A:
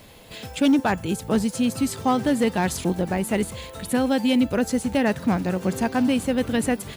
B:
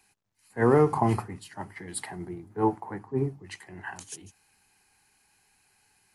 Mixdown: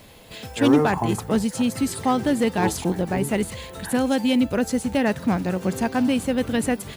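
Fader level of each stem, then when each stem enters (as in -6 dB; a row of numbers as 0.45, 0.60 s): 0.0, -1.5 dB; 0.00, 0.00 s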